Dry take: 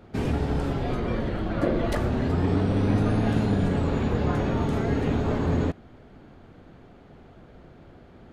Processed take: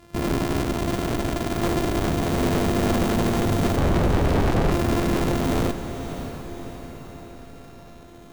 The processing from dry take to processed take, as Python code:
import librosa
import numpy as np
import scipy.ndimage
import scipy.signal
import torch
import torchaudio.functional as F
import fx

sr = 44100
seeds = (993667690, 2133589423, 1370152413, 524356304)

p1 = np.r_[np.sort(x[:len(x) // 128 * 128].reshape(-1, 128), axis=1).ravel(), x[len(x) // 128 * 128:]]
p2 = fx.tilt_eq(p1, sr, slope=-3.5, at=(3.76, 4.72))
p3 = fx.over_compress(p2, sr, threshold_db=-20.0, ratio=-1.0)
p4 = p2 + (p3 * 10.0 ** (-0.5 / 20.0))
p5 = fx.cheby_harmonics(p4, sr, harmonics=(8,), levels_db=(-8,), full_scale_db=0.0)
p6 = np.clip(10.0 ** (8.5 / 20.0) * p5, -1.0, 1.0) / 10.0 ** (8.5 / 20.0)
p7 = p6 + fx.echo_diffused(p6, sr, ms=610, feedback_pct=55, wet_db=-10.0, dry=0)
y = p7 * 10.0 ** (-8.0 / 20.0)